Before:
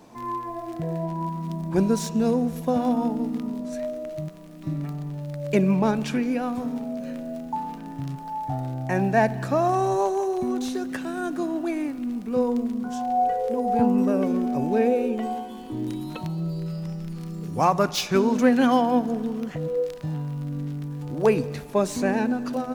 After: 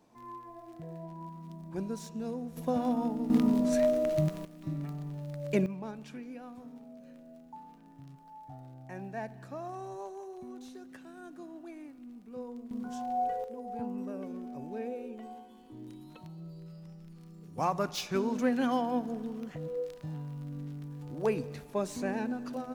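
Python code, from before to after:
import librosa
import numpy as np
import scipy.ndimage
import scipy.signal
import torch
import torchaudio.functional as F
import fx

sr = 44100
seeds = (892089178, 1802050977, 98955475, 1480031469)

y = fx.gain(x, sr, db=fx.steps((0.0, -15.0), (2.57, -7.0), (3.3, 4.5), (4.45, -7.0), (5.66, -19.0), (12.71, -9.0), (13.44, -17.0), (17.58, -10.0)))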